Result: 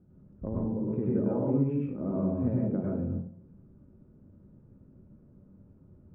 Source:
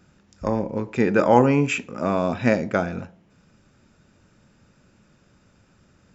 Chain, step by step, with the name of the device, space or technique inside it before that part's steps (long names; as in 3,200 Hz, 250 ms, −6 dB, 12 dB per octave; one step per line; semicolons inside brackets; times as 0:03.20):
television next door (downward compressor 3 to 1, threshold −27 dBFS, peak gain reduction 13.5 dB; low-pass filter 390 Hz 12 dB per octave; convolution reverb RT60 0.50 s, pre-delay 93 ms, DRR −4.5 dB)
level −2.5 dB